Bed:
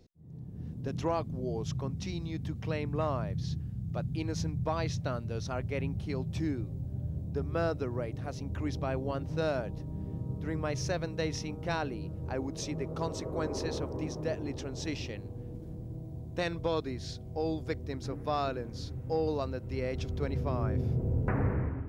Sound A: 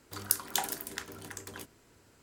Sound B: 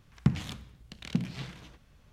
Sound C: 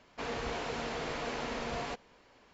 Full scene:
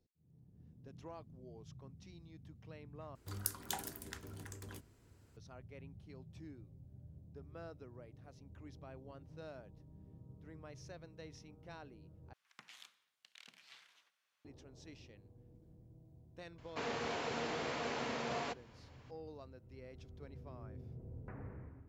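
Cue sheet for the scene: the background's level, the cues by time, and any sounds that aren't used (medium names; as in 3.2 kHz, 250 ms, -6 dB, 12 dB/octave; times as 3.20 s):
bed -19.5 dB
3.15 s: replace with A -10 dB + peaking EQ 72 Hz +14.5 dB 3 oct
12.33 s: replace with B -13 dB + high-pass 1.2 kHz
16.58 s: add C -2.5 dB + high-pass 100 Hz 24 dB/octave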